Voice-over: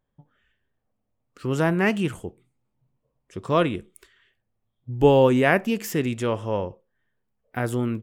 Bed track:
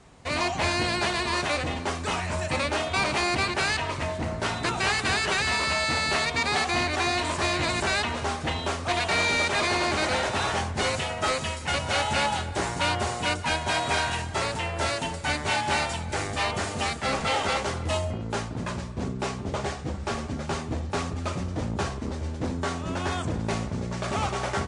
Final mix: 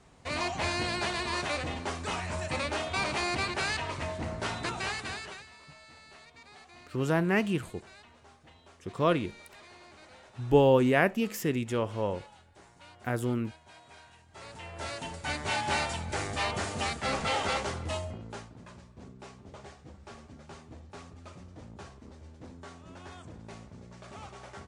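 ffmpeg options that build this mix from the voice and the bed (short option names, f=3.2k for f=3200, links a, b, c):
-filter_complex "[0:a]adelay=5500,volume=-5dB[a];[1:a]volume=18.5dB,afade=t=out:st=4.54:d=0.94:silence=0.0749894,afade=t=in:st=14.26:d=1.44:silence=0.0630957,afade=t=out:st=17.55:d=1.02:silence=0.199526[b];[a][b]amix=inputs=2:normalize=0"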